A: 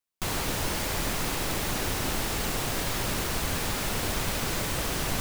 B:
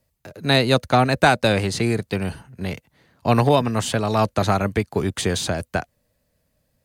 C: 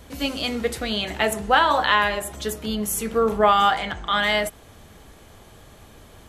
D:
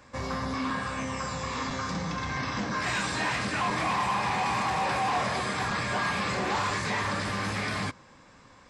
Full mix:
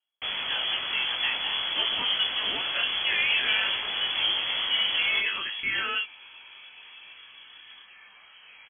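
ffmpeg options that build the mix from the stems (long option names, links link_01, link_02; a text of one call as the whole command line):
ffmpeg -i stem1.wav -i stem2.wav -i stem3.wav -i stem4.wav -filter_complex "[0:a]volume=2dB[link_01];[1:a]volume=-12dB[link_02];[2:a]lowpass=frequency=2400:poles=1,alimiter=limit=-15dB:level=0:latency=1:release=16,adelay=1550,volume=-0.5dB[link_03];[3:a]adelay=1950,volume=-20dB[link_04];[link_01][link_02][link_03][link_04]amix=inputs=4:normalize=0,flanger=delay=17.5:depth=3.9:speed=1.6,lowpass=frequency=2900:width_type=q:width=0.5098,lowpass=frequency=2900:width_type=q:width=0.6013,lowpass=frequency=2900:width_type=q:width=0.9,lowpass=frequency=2900:width_type=q:width=2.563,afreqshift=-3400" out.wav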